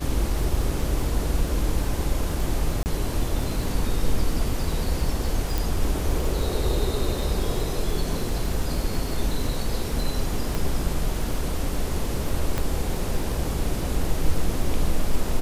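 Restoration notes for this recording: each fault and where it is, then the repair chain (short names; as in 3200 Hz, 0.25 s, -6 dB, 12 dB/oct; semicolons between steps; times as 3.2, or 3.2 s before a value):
crackle 34/s -30 dBFS
2.83–2.86 gap 29 ms
5.58 pop
10.55 pop
12.58 pop -11 dBFS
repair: de-click; interpolate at 2.83, 29 ms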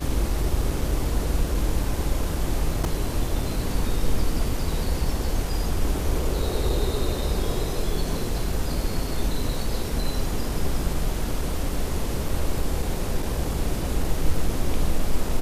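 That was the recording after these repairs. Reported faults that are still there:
10.55 pop
12.58 pop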